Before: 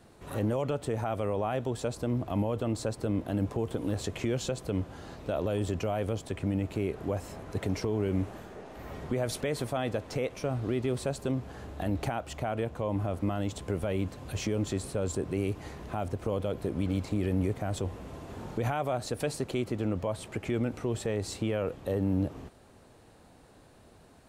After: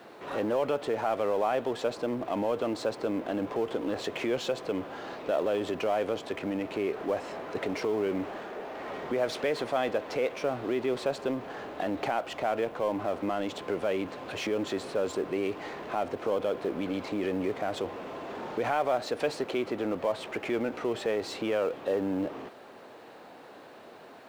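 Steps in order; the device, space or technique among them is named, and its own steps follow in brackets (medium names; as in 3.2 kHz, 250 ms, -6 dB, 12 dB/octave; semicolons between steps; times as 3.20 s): phone line with mismatched companding (band-pass 360–3400 Hz; companding laws mixed up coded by mu); trim +3.5 dB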